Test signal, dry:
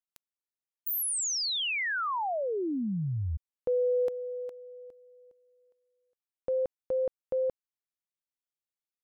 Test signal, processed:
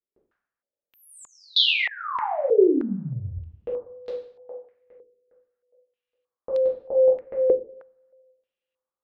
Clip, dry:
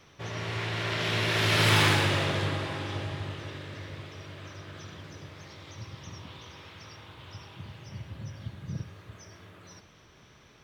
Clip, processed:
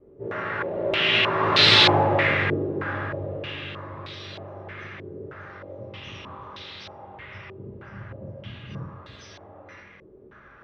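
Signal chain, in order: two-slope reverb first 0.58 s, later 1.8 s, from -28 dB, DRR -6 dB; wow and flutter 15 cents; stepped low-pass 3.2 Hz 410–4000 Hz; gain -3 dB

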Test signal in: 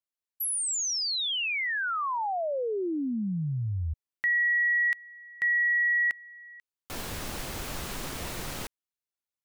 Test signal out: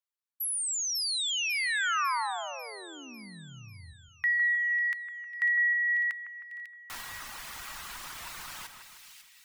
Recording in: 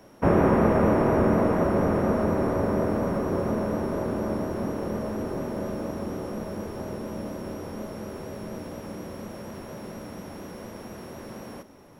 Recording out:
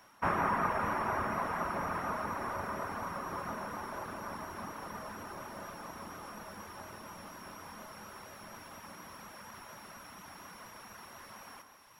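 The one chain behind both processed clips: reverb removal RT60 1.1 s; resonant low shelf 710 Hz -13 dB, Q 1.5; split-band echo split 2100 Hz, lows 0.156 s, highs 0.547 s, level -8 dB; gain -2 dB

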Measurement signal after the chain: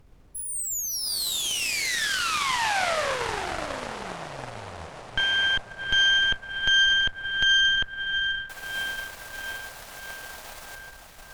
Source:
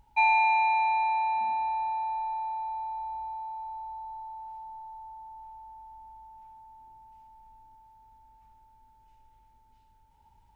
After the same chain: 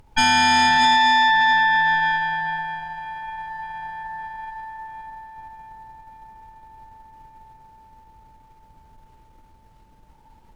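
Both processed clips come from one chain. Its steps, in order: resonant low shelf 430 Hz -13.5 dB, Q 1.5; AGC gain up to 4 dB; diffused feedback echo 0.676 s, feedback 59%, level -6 dB; added noise brown -51 dBFS; added harmonics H 8 -9 dB, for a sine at -8 dBFS

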